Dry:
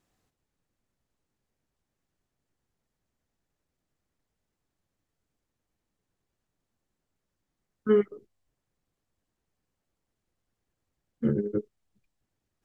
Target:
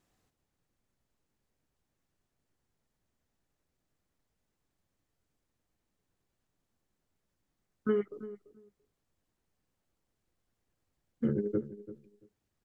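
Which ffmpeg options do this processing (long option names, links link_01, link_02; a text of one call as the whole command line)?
ffmpeg -i in.wav -filter_complex "[0:a]acompressor=threshold=-26dB:ratio=5,asplit=2[link_01][link_02];[link_02]adelay=339,lowpass=frequency=910:poles=1,volume=-14dB,asplit=2[link_03][link_04];[link_04]adelay=339,lowpass=frequency=910:poles=1,volume=0.17[link_05];[link_03][link_05]amix=inputs=2:normalize=0[link_06];[link_01][link_06]amix=inputs=2:normalize=0" out.wav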